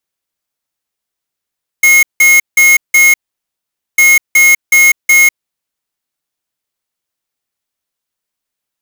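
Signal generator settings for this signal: beep pattern square 2160 Hz, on 0.20 s, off 0.17 s, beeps 4, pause 0.84 s, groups 2, -6 dBFS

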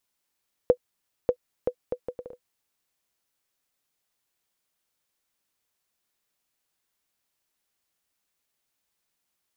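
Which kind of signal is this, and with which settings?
bouncing ball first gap 0.59 s, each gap 0.65, 496 Hz, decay 73 ms -7 dBFS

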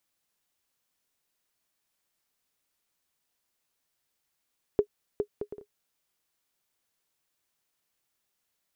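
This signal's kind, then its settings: bouncing ball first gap 0.41 s, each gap 0.52, 414 Hz, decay 79 ms -12 dBFS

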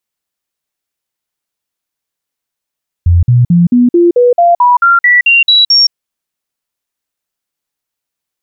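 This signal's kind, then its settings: stepped sine 86.4 Hz up, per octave 2, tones 13, 0.17 s, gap 0.05 s -3.5 dBFS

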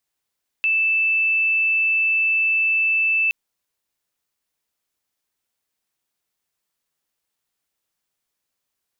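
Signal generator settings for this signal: tone sine 2640 Hz -16 dBFS 2.67 s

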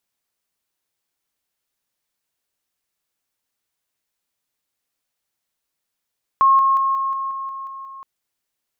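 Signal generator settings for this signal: level ladder 1080 Hz -10 dBFS, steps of -3 dB, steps 9, 0.18 s 0.00 s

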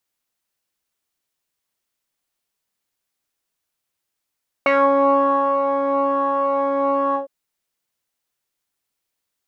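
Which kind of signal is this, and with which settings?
synth patch with pulse-width modulation C#5, oscillator 2 saw, interval -12 st, detune 7 cents, sub -6 dB, noise -13.5 dB, filter lowpass, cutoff 560 Hz, Q 4.2, filter envelope 2 oct, filter decay 0.21 s, attack 1.6 ms, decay 0.97 s, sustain -5.5 dB, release 0.12 s, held 2.49 s, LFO 1.1 Hz, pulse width 32%, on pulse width 8%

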